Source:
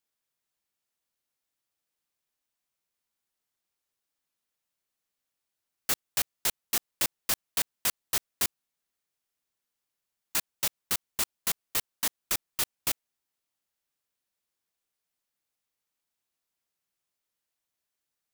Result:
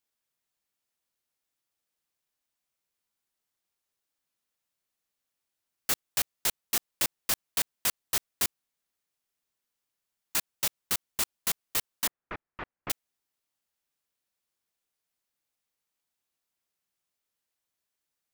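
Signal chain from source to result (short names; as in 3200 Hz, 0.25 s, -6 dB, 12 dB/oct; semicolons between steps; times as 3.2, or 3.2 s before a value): 12.07–12.9 LPF 2000 Hz 24 dB/oct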